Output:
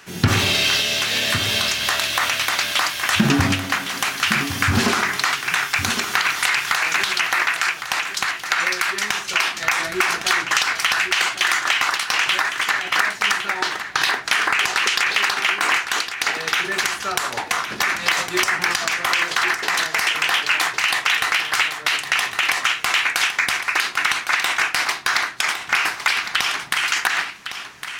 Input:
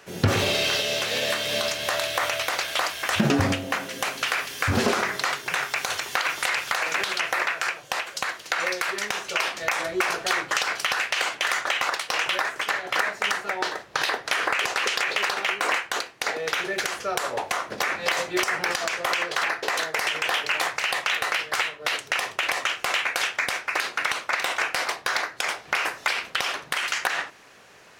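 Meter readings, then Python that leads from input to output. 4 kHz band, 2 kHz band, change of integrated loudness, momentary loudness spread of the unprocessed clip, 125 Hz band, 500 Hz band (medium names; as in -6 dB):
+7.0 dB, +6.5 dB, +6.0 dB, 4 LU, +5.0 dB, -2.0 dB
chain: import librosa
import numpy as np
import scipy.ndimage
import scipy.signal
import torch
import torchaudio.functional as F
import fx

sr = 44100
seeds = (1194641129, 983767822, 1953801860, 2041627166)

y = fx.peak_eq(x, sr, hz=530.0, db=-13.0, octaves=0.87)
y = fx.hum_notches(y, sr, base_hz=50, count=3)
y = y + 10.0 ** (-10.0 / 20.0) * np.pad(y, (int(1109 * sr / 1000.0), 0))[:len(y)]
y = y * 10.0 ** (6.5 / 20.0)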